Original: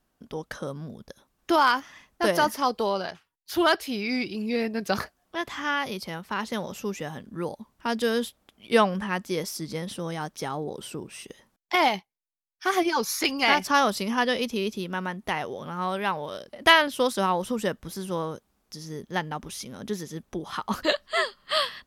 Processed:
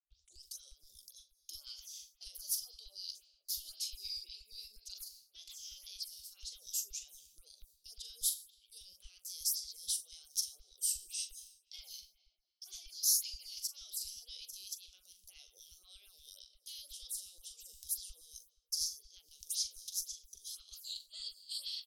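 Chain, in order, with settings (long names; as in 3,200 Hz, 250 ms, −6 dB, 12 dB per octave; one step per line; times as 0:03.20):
turntable start at the beginning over 0.45 s
noise gate with hold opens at −45 dBFS
reversed playback
downward compressor 12 to 1, threshold −35 dBFS, peak gain reduction 24 dB
reversed playback
low-shelf EQ 200 Hz +10 dB
brickwall limiter −32.5 dBFS, peak gain reduction 11 dB
double-tracking delay 42 ms −9 dB
on a send at −13 dB: convolution reverb RT60 1.9 s, pre-delay 48 ms
on the sum: auto-filter high-pass saw down 8.4 Hz 260–1,600 Hz
inverse Chebyshev band-stop filter 130–1,900 Hz, stop band 50 dB
phaser with staggered stages 1.9 Hz
level +15.5 dB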